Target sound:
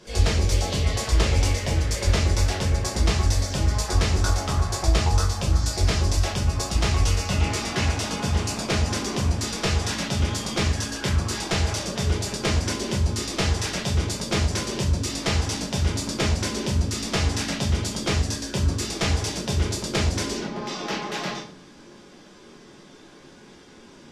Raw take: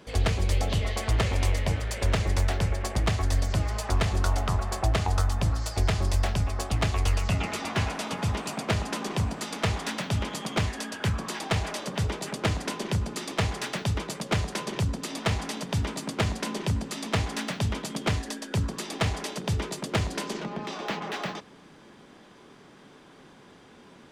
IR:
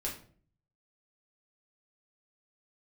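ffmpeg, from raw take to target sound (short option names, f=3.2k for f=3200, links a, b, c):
-filter_complex "[0:a]equalizer=f=5.8k:t=o:w=1.1:g=9[a];[1:a]atrim=start_sample=2205[b];[a][b]afir=irnorm=-1:irlink=0" -ar 44100 -c:a libvorbis -b:a 48k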